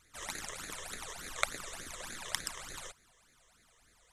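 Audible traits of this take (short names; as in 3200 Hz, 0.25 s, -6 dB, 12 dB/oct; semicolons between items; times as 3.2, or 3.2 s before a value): phasing stages 12, 3.4 Hz, lowest notch 240–1000 Hz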